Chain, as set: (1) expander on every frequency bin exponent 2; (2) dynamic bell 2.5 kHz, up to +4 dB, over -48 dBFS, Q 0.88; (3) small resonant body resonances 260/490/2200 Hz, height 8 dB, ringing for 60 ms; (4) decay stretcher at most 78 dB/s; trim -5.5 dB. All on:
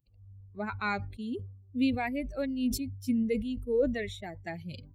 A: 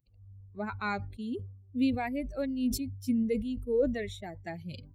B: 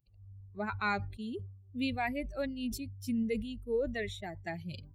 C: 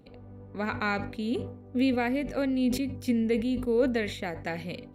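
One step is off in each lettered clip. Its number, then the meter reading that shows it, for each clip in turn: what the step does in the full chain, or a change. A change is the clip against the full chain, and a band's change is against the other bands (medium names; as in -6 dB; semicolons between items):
2, 2 kHz band -2.5 dB; 3, 250 Hz band -4.0 dB; 1, 8 kHz band -4.5 dB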